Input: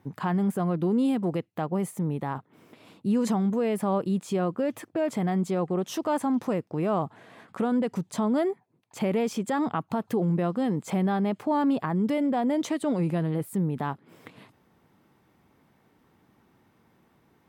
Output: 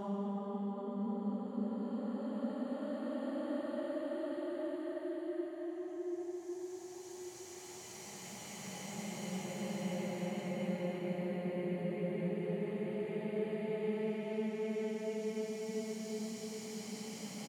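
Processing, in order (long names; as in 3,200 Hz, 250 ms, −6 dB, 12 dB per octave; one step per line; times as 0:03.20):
source passing by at 0:04.67, 25 m/s, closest 17 metres
upward compression, threshold −44 dBFS
on a send: single-tap delay 385 ms −4 dB
on the sum: extreme stretch with random phases 22×, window 0.25 s, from 0:08.50
level +3 dB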